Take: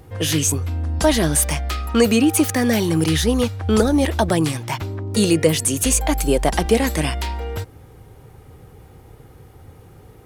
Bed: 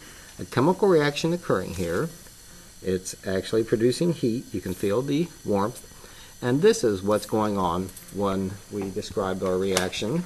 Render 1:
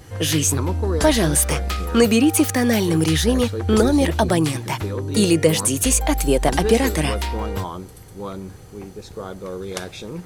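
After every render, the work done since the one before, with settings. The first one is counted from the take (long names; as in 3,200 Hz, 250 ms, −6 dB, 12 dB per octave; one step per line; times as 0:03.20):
mix in bed −6 dB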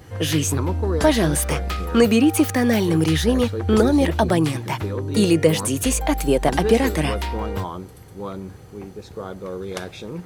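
high-pass filter 54 Hz
parametric band 8,500 Hz −6 dB 2 octaves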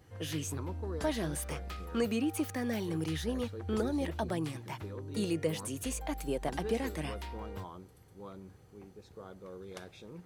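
level −16 dB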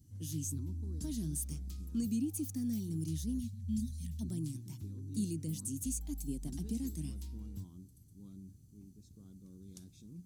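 0:03.40–0:04.21: time-frequency box erased 240–1,700 Hz
drawn EQ curve 270 Hz 0 dB, 510 Hz −28 dB, 1,900 Hz −27 dB, 6,500 Hz +1 dB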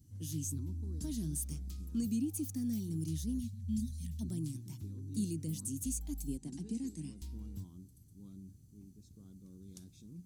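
0:06.37–0:07.22: loudspeaker in its box 140–9,000 Hz, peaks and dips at 650 Hz −6 dB, 1,300 Hz −8 dB, 3,500 Hz −6 dB, 5,600 Hz −4 dB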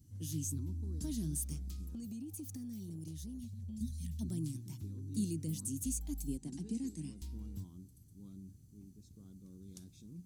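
0:01.90–0:03.81: downward compressor 10 to 1, threshold −41 dBFS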